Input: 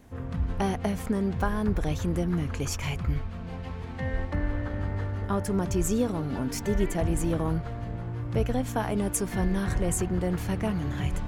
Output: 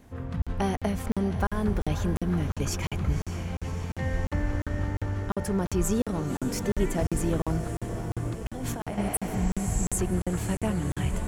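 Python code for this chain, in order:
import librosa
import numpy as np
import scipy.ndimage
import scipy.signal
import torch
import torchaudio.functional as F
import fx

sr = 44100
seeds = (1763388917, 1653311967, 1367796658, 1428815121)

y = fx.spec_repair(x, sr, seeds[0], start_s=8.94, length_s=0.97, low_hz=270.0, high_hz=8000.0, source='both')
y = fx.over_compress(y, sr, threshold_db=-33.0, ratio=-1.0, at=(8.1, 8.98))
y = fx.echo_diffused(y, sr, ms=559, feedback_pct=68, wet_db=-11.0)
y = fx.buffer_crackle(y, sr, first_s=0.42, period_s=0.35, block=2048, kind='zero')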